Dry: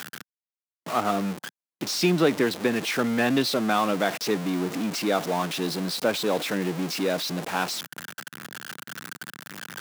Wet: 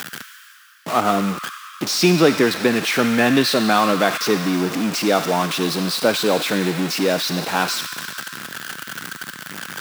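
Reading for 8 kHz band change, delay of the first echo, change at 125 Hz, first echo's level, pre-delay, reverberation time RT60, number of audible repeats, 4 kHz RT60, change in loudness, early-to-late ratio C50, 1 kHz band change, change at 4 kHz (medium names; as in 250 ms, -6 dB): +7.5 dB, no echo, +6.5 dB, no echo, 40 ms, 2.9 s, no echo, 2.6 s, +6.5 dB, 5.5 dB, +7.0 dB, +7.5 dB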